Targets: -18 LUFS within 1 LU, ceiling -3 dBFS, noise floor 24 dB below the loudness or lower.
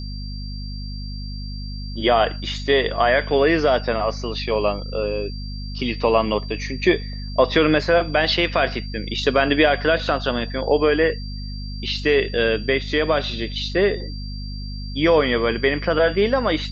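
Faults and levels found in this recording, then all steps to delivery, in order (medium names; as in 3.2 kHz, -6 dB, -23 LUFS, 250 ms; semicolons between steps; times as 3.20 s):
hum 50 Hz; highest harmonic 250 Hz; hum level -28 dBFS; steady tone 4.7 kHz; tone level -38 dBFS; loudness -20.5 LUFS; peak level -3.5 dBFS; loudness target -18.0 LUFS
-> de-hum 50 Hz, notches 5; band-stop 4.7 kHz, Q 30; trim +2.5 dB; peak limiter -3 dBFS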